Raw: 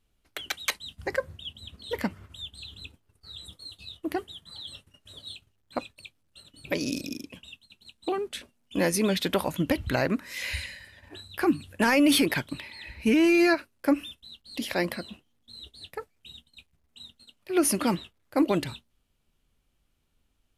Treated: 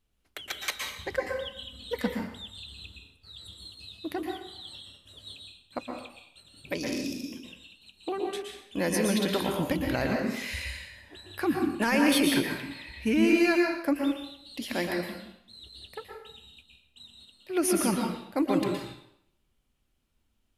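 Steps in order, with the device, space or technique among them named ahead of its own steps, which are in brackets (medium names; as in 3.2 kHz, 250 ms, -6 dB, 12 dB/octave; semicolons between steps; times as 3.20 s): bathroom (reverberation RT60 0.75 s, pre-delay 111 ms, DRR 1 dB); 1.18–2.14 s: comb 4 ms, depth 64%; trim -4 dB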